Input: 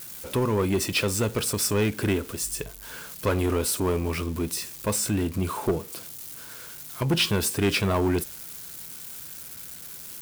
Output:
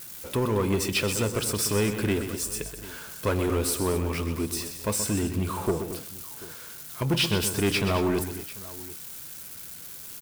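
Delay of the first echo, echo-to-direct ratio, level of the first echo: 127 ms, -7.5 dB, -9.5 dB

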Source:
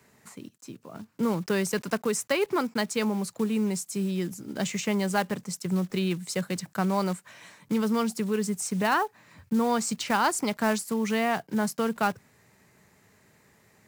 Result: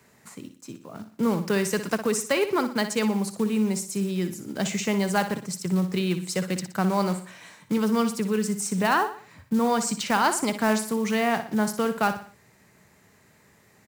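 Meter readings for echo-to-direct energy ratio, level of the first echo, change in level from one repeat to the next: -9.5 dB, -10.5 dB, -7.5 dB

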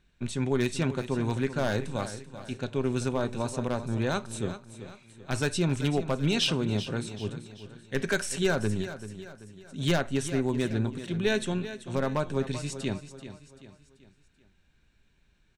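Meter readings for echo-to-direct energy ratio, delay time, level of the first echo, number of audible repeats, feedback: -11.5 dB, 386 ms, -12.5 dB, 4, 44%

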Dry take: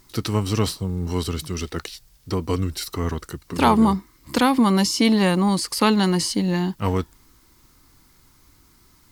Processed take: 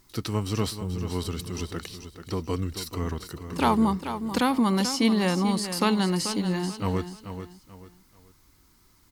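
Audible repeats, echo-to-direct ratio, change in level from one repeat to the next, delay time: 3, -9.5 dB, -10.0 dB, 436 ms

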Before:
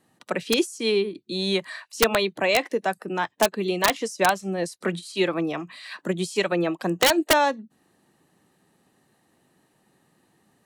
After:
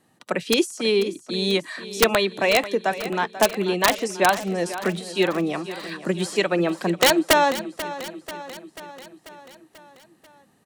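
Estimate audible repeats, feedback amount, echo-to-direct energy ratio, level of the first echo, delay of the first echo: 5, 60%, -12.0 dB, -14.0 dB, 489 ms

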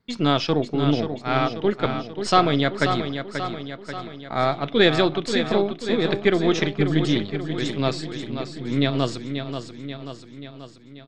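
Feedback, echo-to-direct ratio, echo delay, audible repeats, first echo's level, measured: 57%, -6.5 dB, 535 ms, 6, -8.0 dB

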